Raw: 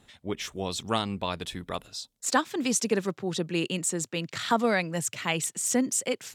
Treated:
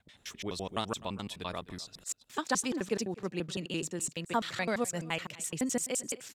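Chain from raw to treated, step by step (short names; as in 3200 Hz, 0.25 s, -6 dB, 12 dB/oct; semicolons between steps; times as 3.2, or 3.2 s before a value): slices in reverse order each 85 ms, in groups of 3; echo 0.254 s -20 dB; gain -6 dB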